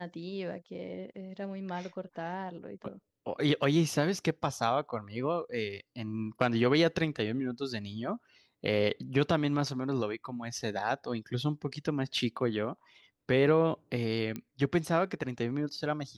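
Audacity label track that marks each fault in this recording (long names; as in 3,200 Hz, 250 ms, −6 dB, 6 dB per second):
14.360000	14.360000	click −23 dBFS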